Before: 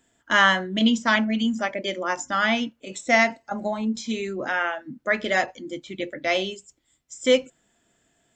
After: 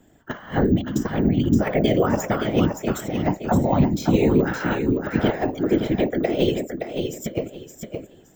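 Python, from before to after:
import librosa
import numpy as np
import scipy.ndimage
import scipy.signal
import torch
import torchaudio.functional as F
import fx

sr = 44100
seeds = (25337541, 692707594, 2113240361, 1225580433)

p1 = fx.whisperise(x, sr, seeds[0])
p2 = 10.0 ** (-19.5 / 20.0) * np.tanh(p1 / 10.0 ** (-19.5 / 20.0))
p3 = p1 + F.gain(torch.from_numpy(p2), -5.5).numpy()
p4 = fx.over_compress(p3, sr, threshold_db=-24.0, ratio=-0.5)
p5 = fx.tilt_shelf(p4, sr, db=7.5, hz=890.0)
p6 = p5 + fx.echo_feedback(p5, sr, ms=569, feedback_pct=23, wet_db=-6.0, dry=0)
p7 = np.repeat(scipy.signal.resample_poly(p6, 1, 2), 2)[:len(p6)]
y = fx.peak_eq(p7, sr, hz=690.0, db=-10.0, octaves=0.61, at=(4.26, 5.18))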